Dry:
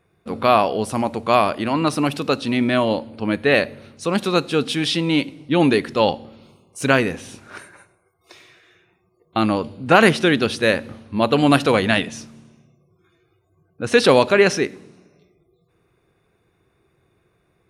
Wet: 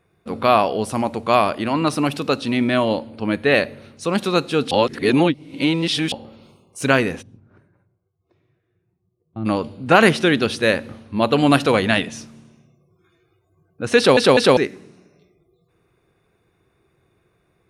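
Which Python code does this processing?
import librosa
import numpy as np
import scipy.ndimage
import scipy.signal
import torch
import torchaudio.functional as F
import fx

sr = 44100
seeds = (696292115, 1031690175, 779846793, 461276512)

y = fx.bandpass_q(x, sr, hz=110.0, q=1.2, at=(7.21, 9.45), fade=0.02)
y = fx.edit(y, sr, fx.reverse_span(start_s=4.71, length_s=1.41),
    fx.stutter_over(start_s=13.97, slice_s=0.2, count=3), tone=tone)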